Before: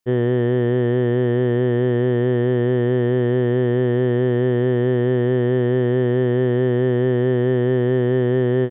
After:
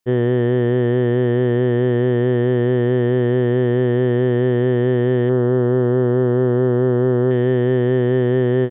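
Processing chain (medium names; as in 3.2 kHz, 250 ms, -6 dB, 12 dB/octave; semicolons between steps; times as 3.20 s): 5.29–7.31 s: resonant high shelf 1.7 kHz -7 dB, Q 3; trim +1.5 dB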